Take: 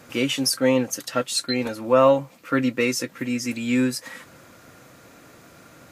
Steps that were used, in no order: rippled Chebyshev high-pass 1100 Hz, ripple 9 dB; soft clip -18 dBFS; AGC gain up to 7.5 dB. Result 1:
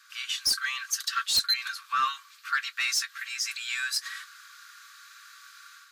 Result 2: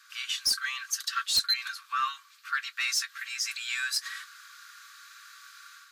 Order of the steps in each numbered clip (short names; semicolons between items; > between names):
rippled Chebyshev high-pass > AGC > soft clip; AGC > rippled Chebyshev high-pass > soft clip